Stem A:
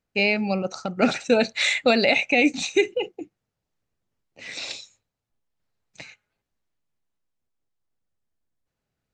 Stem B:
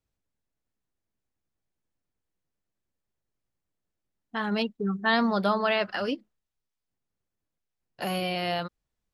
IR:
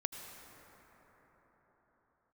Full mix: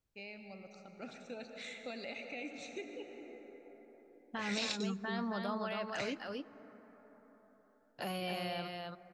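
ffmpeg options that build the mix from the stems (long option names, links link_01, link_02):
-filter_complex "[0:a]dynaudnorm=framelen=300:gausssize=11:maxgain=12.5dB,volume=-8.5dB,asplit=2[link_01][link_02];[link_02]volume=-18.5dB[link_03];[1:a]alimiter=limit=-21.5dB:level=0:latency=1:release=138,volume=-4dB,asplit=4[link_04][link_05][link_06][link_07];[link_05]volume=-11.5dB[link_08];[link_06]volume=-3dB[link_09];[link_07]apad=whole_len=402975[link_10];[link_01][link_10]sidechaingate=range=-33dB:threshold=-46dB:ratio=16:detection=peak[link_11];[2:a]atrim=start_sample=2205[link_12];[link_03][link_08]amix=inputs=2:normalize=0[link_13];[link_13][link_12]afir=irnorm=-1:irlink=0[link_14];[link_09]aecho=0:1:272:1[link_15];[link_11][link_04][link_14][link_15]amix=inputs=4:normalize=0,acompressor=threshold=-45dB:ratio=1.5"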